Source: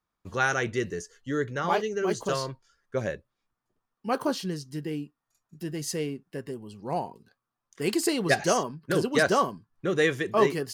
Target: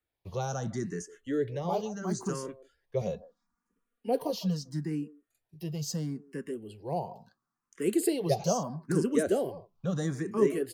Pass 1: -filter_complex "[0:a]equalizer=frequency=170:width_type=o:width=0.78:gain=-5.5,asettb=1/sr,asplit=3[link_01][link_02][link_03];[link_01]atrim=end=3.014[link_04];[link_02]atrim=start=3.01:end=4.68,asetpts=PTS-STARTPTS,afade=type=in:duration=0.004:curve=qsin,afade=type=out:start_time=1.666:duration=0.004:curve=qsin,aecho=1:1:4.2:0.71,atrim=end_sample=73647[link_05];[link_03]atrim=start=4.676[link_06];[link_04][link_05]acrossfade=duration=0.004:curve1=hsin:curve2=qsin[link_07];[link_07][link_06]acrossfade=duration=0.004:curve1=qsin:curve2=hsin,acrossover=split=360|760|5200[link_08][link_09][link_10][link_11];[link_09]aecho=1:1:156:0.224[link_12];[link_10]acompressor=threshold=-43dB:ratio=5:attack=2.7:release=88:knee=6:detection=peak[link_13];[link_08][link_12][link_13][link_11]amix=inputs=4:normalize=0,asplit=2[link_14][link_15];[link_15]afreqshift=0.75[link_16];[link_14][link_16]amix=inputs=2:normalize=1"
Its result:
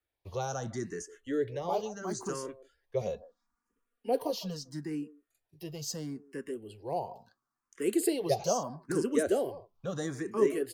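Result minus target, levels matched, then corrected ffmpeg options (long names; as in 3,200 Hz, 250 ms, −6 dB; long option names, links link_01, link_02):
125 Hz band −5.5 dB
-filter_complex "[0:a]equalizer=frequency=170:width_type=o:width=0.78:gain=4.5,asettb=1/sr,asplit=3[link_01][link_02][link_03];[link_01]atrim=end=3.014[link_04];[link_02]atrim=start=3.01:end=4.68,asetpts=PTS-STARTPTS,afade=type=in:duration=0.004:curve=qsin,afade=type=out:start_time=1.666:duration=0.004:curve=qsin,aecho=1:1:4.2:0.71,atrim=end_sample=73647[link_05];[link_03]atrim=start=4.676[link_06];[link_04][link_05]acrossfade=duration=0.004:curve1=hsin:curve2=qsin[link_07];[link_07][link_06]acrossfade=duration=0.004:curve1=qsin:curve2=hsin,acrossover=split=360|760|5200[link_08][link_09][link_10][link_11];[link_09]aecho=1:1:156:0.224[link_12];[link_10]acompressor=threshold=-43dB:ratio=5:attack=2.7:release=88:knee=6:detection=peak[link_13];[link_08][link_12][link_13][link_11]amix=inputs=4:normalize=0,asplit=2[link_14][link_15];[link_15]afreqshift=0.75[link_16];[link_14][link_16]amix=inputs=2:normalize=1"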